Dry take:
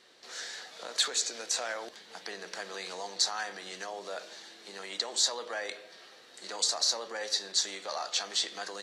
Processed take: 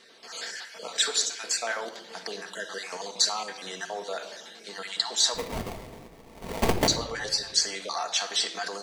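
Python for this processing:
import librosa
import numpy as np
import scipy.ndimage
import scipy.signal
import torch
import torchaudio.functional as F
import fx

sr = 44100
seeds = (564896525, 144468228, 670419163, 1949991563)

y = fx.spec_dropout(x, sr, seeds[0], share_pct=29)
y = fx.sample_hold(y, sr, seeds[1], rate_hz=1500.0, jitter_pct=20, at=(5.34, 6.88))
y = fx.room_shoebox(y, sr, seeds[2], volume_m3=3100.0, walls='furnished', distance_m=1.6)
y = F.gain(torch.from_numpy(y), 5.0).numpy()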